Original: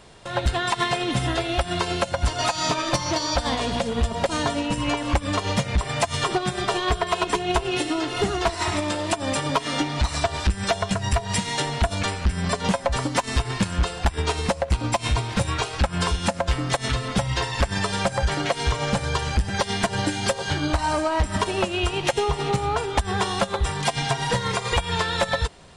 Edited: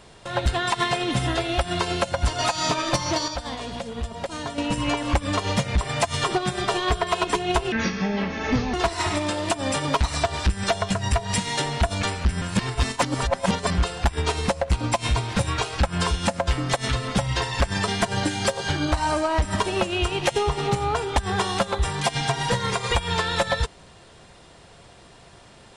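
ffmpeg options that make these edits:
-filter_complex "[0:a]asplit=9[s0][s1][s2][s3][s4][s5][s6][s7][s8];[s0]atrim=end=3.282[s9];[s1]atrim=start=3.278:end=4.582,asetpts=PTS-STARTPTS,volume=0.422[s10];[s2]atrim=start=4.578:end=7.724[s11];[s3]atrim=start=7.72:end=8.35,asetpts=PTS-STARTPTS,asetrate=27342,aresample=44100,atrim=end_sample=44811,asetpts=PTS-STARTPTS[s12];[s4]atrim=start=8.346:end=9.622[s13];[s5]atrim=start=10.008:end=12.422[s14];[s6]atrim=start=12.418:end=13.782,asetpts=PTS-STARTPTS,areverse[s15];[s7]atrim=start=13.778:end=17.882[s16];[s8]atrim=start=19.688[s17];[s9][s10]acrossfade=d=0.004:c1=hsin:c2=hsin[s18];[s18][s11]acrossfade=d=0.004:c1=hsin:c2=hsin[s19];[s19][s12]acrossfade=d=0.004:c1=hsin:c2=hsin[s20];[s20][s13]acrossfade=d=0.004:c1=hsin:c2=hsin[s21];[s21][s14]acrossfade=d=0.004:c1=hsin:c2=hsin[s22];[s22][s15]acrossfade=d=0.004:c1=hsin:c2=hsin[s23];[s23][s16]acrossfade=d=0.004:c1=hsin:c2=hsin[s24];[s24][s17]acrossfade=d=0.004:c1=hsin:c2=hsin"

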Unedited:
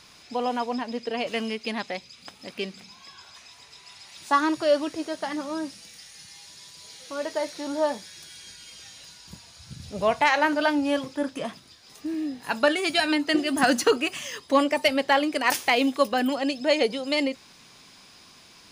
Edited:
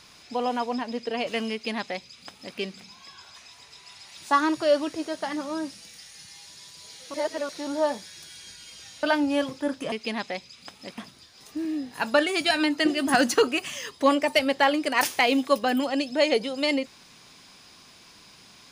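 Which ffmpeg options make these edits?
-filter_complex "[0:a]asplit=6[s0][s1][s2][s3][s4][s5];[s0]atrim=end=7.142[s6];[s1]atrim=start=7.138:end=7.492,asetpts=PTS-STARTPTS,areverse[s7];[s2]atrim=start=7.488:end=9.032[s8];[s3]atrim=start=10.578:end=11.472[s9];[s4]atrim=start=1.518:end=2.582[s10];[s5]atrim=start=11.468[s11];[s6][s7]acrossfade=d=0.004:c1=hsin:c2=hsin[s12];[s12][s8]acrossfade=d=0.004:c1=hsin:c2=hsin[s13];[s13][s9]acrossfade=d=0.004:c1=hsin:c2=hsin[s14];[s14][s10]acrossfade=d=0.004:c1=hsin:c2=hsin[s15];[s15][s11]acrossfade=d=0.004:c1=hsin:c2=hsin"

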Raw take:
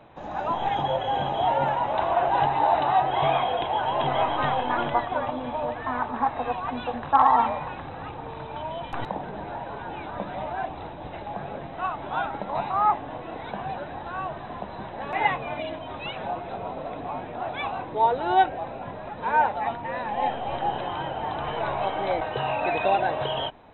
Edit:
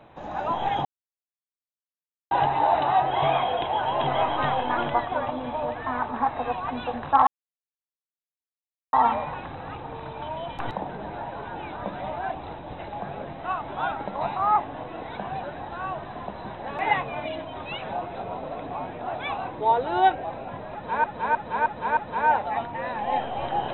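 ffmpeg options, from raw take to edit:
-filter_complex "[0:a]asplit=8[s0][s1][s2][s3][s4][s5][s6][s7];[s0]atrim=end=0.85,asetpts=PTS-STARTPTS,afade=t=out:st=0.846:d=0.004:c=hsin[s8];[s1]atrim=start=0.85:end=2.31,asetpts=PTS-STARTPTS,volume=0[s9];[s2]atrim=start=2.31:end=7.27,asetpts=PTS-STARTPTS,afade=t=in:d=0.004:c=hsin,afade=t=out:st=4.956:d=0.004:c=hsin,apad=pad_dur=1.66[s10];[s3]atrim=start=7.27:end=19.382,asetpts=PTS-STARTPTS,afade=t=in:d=0.004:c=hsin[s11];[s4]atrim=start=19.068:end=19.382[s12];[s5]atrim=start=19.068:end=19.382[s13];[s6]atrim=start=19.068:end=19.382[s14];[s7]atrim=start=19.068[s15];[s8][s9][s10][s11]concat=n=4:v=0:a=1[s16];[s16][s12]acrossfade=d=0.004:c1=hsin:c2=hsin[s17];[s17][s13]acrossfade=d=0.004:c1=hsin:c2=hsin[s18];[s18][s14]acrossfade=d=0.004:c1=hsin:c2=hsin[s19];[s19][s15]acrossfade=d=0.004:c1=hsin:c2=hsin"

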